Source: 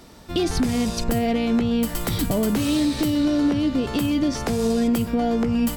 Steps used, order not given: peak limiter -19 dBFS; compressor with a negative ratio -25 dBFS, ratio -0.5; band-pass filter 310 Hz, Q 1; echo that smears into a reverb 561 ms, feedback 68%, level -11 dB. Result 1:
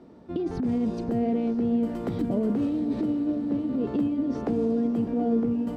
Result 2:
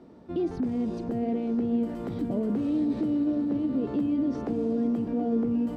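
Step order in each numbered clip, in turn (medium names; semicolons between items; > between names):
band-pass filter > peak limiter > compressor with a negative ratio > echo that smears into a reverb; peak limiter > band-pass filter > compressor with a negative ratio > echo that smears into a reverb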